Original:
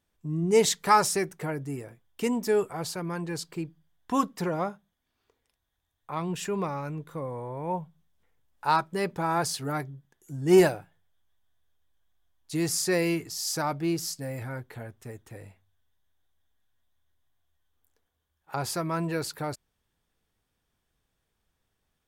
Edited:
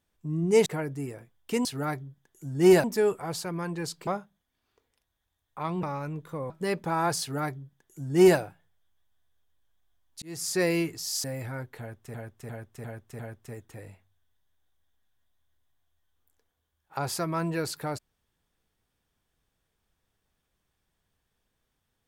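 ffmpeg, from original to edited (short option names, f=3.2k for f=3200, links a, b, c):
-filter_complex "[0:a]asplit=13[a][b][c][d][e][f][g][h][i][j][k][l][m];[a]atrim=end=0.662[n];[b]atrim=start=1.358:end=2.352[o];[c]atrim=start=9.518:end=10.712[p];[d]atrim=start=2.348:end=3.582[q];[e]atrim=start=4.588:end=6.352[r];[f]atrim=start=6.648:end=7.322[s];[g]atrim=start=8.818:end=12.54,asetpts=PTS-STARTPTS,afade=t=out:st=3.718:d=0.004:c=hsin[t];[h]atrim=start=12.54:end=13.562,asetpts=PTS-STARTPTS,afade=t=in:d=0.38[u];[i]atrim=start=14.208:end=15.112[v];[j]atrim=start=14.758:end=15.112[w];[k]atrim=start=14.758:end=15.112[x];[l]atrim=start=14.758:end=15.112[y];[m]atrim=start=14.758[z];[n][o]acrossfade=d=0.004:c1=hsin:c2=hsin[aa];[aa][p]acrossfade=d=0.004:c1=hsin:c2=hsin[ab];[ab][q]acrossfade=d=0.004:c1=hsin:c2=hsin[ac];[ac][r]acrossfade=d=0.004:c1=hsin:c2=hsin[ad];[ad][s]acrossfade=d=0.004:c1=hsin:c2=hsin[ae];[t][u]concat=n=2:v=0:a=1[af];[ae][af]acrossfade=d=0.004:c1=hsin:c2=hsin[ag];[ag][v]acrossfade=d=0.004:c1=hsin:c2=hsin[ah];[ah][w]acrossfade=d=0.004:c1=hsin:c2=hsin[ai];[ai][x]acrossfade=d=0.004:c1=hsin:c2=hsin[aj];[aj][y]acrossfade=d=0.004:c1=hsin:c2=hsin[ak];[ak][z]acrossfade=d=0.004:c1=hsin:c2=hsin"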